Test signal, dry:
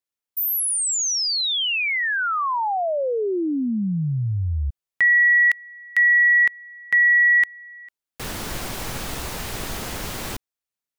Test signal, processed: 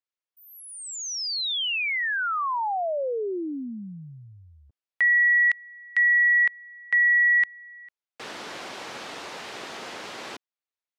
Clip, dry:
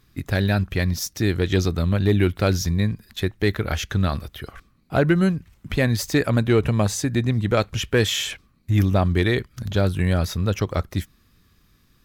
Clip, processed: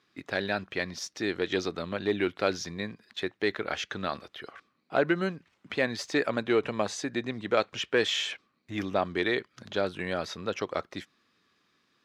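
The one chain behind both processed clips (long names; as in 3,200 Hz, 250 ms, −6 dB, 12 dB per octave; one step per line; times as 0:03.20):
band-pass filter 350–4,800 Hz
level −3.5 dB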